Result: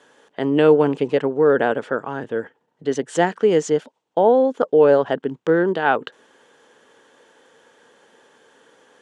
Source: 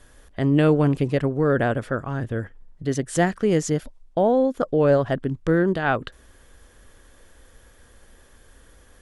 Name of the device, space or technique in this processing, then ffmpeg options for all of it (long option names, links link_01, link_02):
television speaker: -af "highpass=frequency=180:width=0.5412,highpass=frequency=180:width=1.3066,equalizer=frequency=200:width_type=q:width=4:gain=-3,equalizer=frequency=450:width_type=q:width=4:gain=8,equalizer=frequency=880:width_type=q:width=4:gain=9,equalizer=frequency=1500:width_type=q:width=4:gain=3,equalizer=frequency=3000:width_type=q:width=4:gain=5,equalizer=frequency=5000:width_type=q:width=4:gain=-3,lowpass=frequency=7800:width=0.5412,lowpass=frequency=7800:width=1.3066"